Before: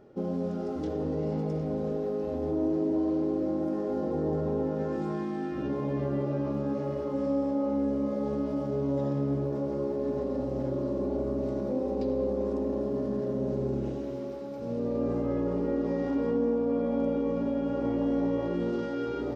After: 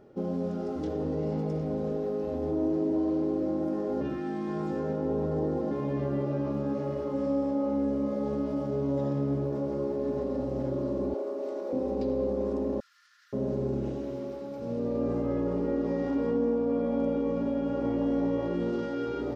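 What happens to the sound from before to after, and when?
4.01–5.71 s: reverse
11.14–11.73 s: high-pass 360 Hz 24 dB/octave
12.80–13.33 s: rippled Chebyshev high-pass 1.3 kHz, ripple 3 dB

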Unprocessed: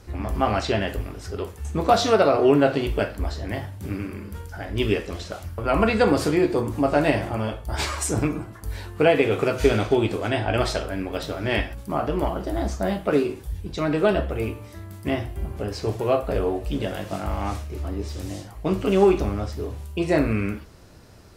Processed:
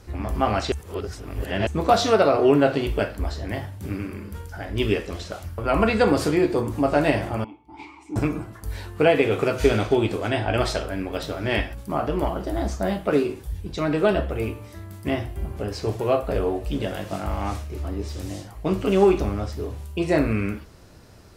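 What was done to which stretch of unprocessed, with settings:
0.72–1.67 s: reverse
7.44–8.16 s: vowel filter u

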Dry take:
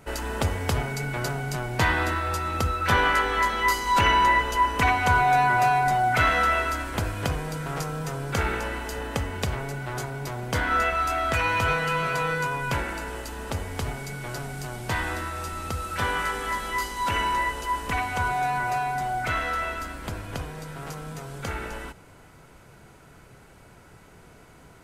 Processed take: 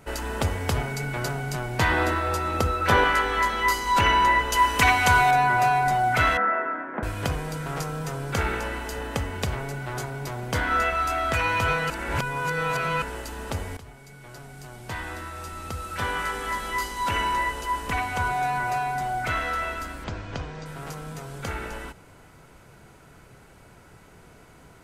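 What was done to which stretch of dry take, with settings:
1.91–3.04 s: peaking EQ 480 Hz +5.5 dB 1.7 oct
4.52–5.31 s: treble shelf 2.1 kHz +9.5 dB
6.37–7.03 s: elliptic band-pass 200–1800 Hz, stop band 50 dB
11.90–13.02 s: reverse
13.77–16.70 s: fade in, from -16 dB
20.04–20.66 s: inverse Chebyshev low-pass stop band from 11 kHz

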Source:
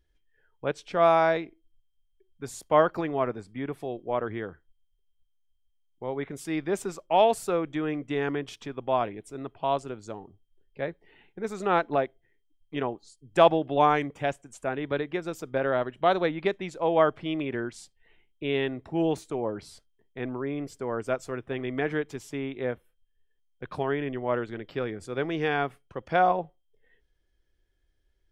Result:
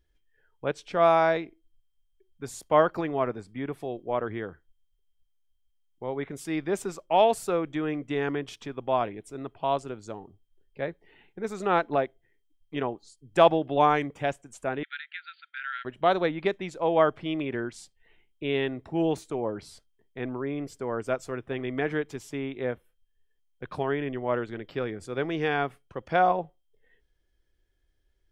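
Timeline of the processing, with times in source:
14.83–15.85 s: brick-wall FIR band-pass 1.3–4.7 kHz

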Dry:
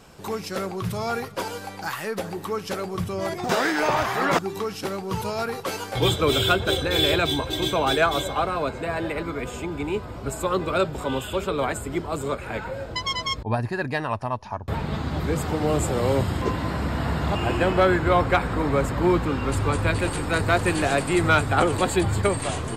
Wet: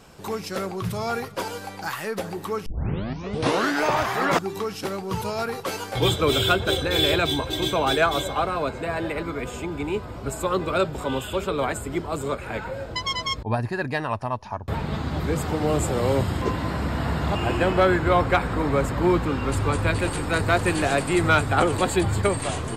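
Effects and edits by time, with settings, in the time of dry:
2.66 s: tape start 1.16 s

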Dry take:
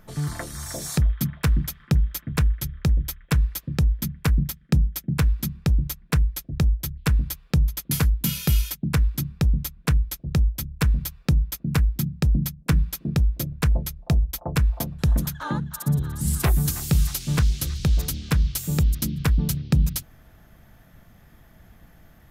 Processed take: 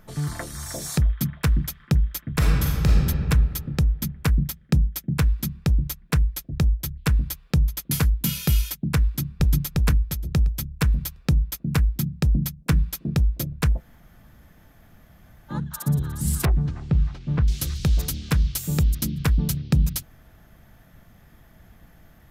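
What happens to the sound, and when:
2.33–2.98 s: reverb throw, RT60 2.3 s, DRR -3.5 dB
9.05–9.60 s: echo throw 350 ms, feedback 35%, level -1.5 dB
13.76–15.53 s: room tone, crossfade 0.10 s
16.45–17.48 s: tape spacing loss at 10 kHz 44 dB

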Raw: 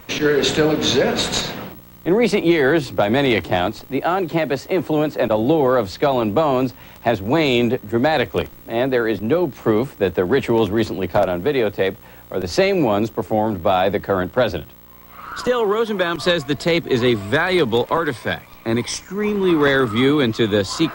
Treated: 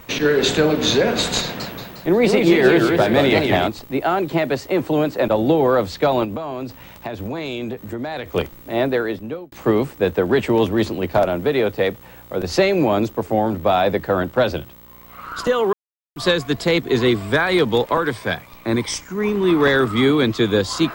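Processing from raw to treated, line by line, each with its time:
1.42–3.67 s: modulated delay 178 ms, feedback 52%, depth 200 cents, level -4 dB
6.24–8.32 s: compression 16:1, threshold -23 dBFS
8.84–9.52 s: fade out
15.73–16.16 s: mute

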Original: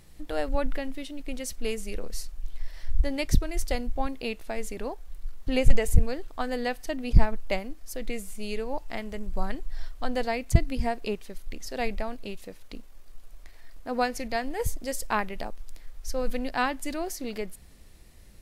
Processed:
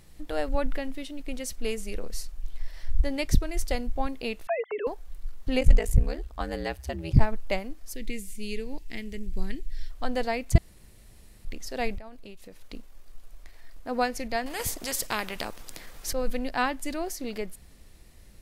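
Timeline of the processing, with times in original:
4.47–4.87 s: formants replaced by sine waves
5.59–7.19 s: ring modulator 22 Hz -> 91 Hz
7.94–9.90 s: high-order bell 880 Hz -15 dB
10.58–11.45 s: room tone
11.98–12.61 s: compression 3:1, threshold -42 dBFS
14.46–16.13 s: spectrum-flattening compressor 2:1

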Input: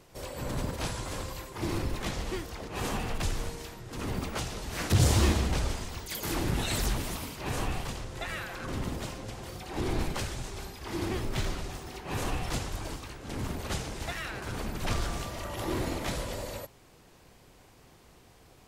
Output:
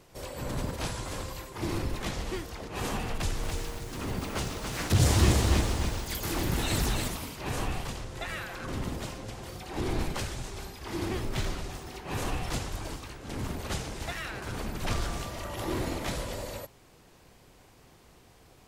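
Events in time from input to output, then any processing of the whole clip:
3.14–7.08 s: bit-crushed delay 285 ms, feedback 35%, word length 8-bit, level -3.5 dB

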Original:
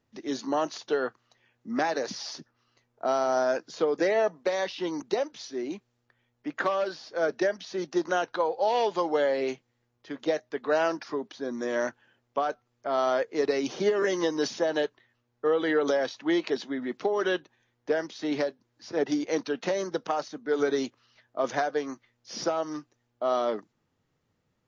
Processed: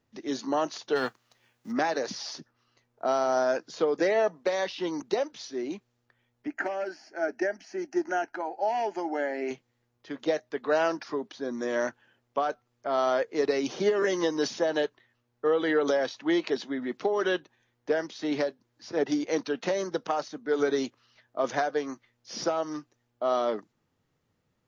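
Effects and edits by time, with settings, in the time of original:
0.95–1.71 s: formants flattened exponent 0.6
6.47–9.51 s: static phaser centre 740 Hz, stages 8

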